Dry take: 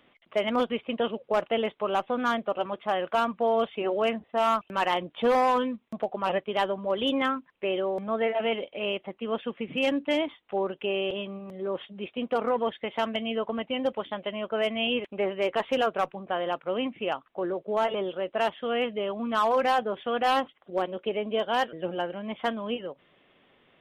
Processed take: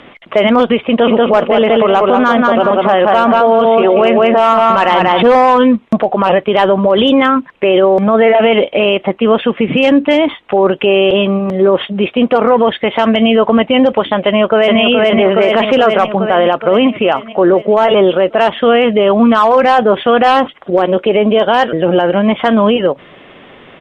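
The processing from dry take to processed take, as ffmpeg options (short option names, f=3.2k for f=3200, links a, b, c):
-filter_complex "[0:a]asplit=3[a][b][c];[a]afade=t=out:st=0.98:d=0.02[d];[b]asplit=2[e][f];[f]adelay=186,lowpass=f=3.7k:p=1,volume=-4dB,asplit=2[g][h];[h]adelay=186,lowpass=f=3.7k:p=1,volume=0.3,asplit=2[i][j];[j]adelay=186,lowpass=f=3.7k:p=1,volume=0.3,asplit=2[k][l];[l]adelay=186,lowpass=f=3.7k:p=1,volume=0.3[m];[e][g][i][k][m]amix=inputs=5:normalize=0,afade=t=in:st=0.98:d=0.02,afade=t=out:st=5.22:d=0.02[n];[c]afade=t=in:st=5.22:d=0.02[o];[d][n][o]amix=inputs=3:normalize=0,asplit=2[p][q];[q]afade=t=in:st=14.24:d=0.01,afade=t=out:st=14.8:d=0.01,aecho=0:1:420|840|1260|1680|2100|2520|2940|3360|3780:0.891251|0.534751|0.32085|0.19251|0.115506|0.0693037|0.0415822|0.0249493|0.0149696[r];[p][r]amix=inputs=2:normalize=0,lowpass=6.7k,equalizer=f=5.1k:t=o:w=1.6:g=-5,alimiter=level_in=26dB:limit=-1dB:release=50:level=0:latency=1,volume=-1dB"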